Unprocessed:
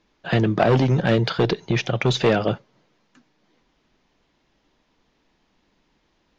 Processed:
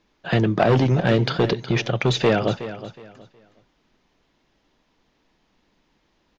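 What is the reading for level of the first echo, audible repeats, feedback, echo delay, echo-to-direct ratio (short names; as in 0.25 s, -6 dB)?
-13.5 dB, 2, 26%, 0.367 s, -13.0 dB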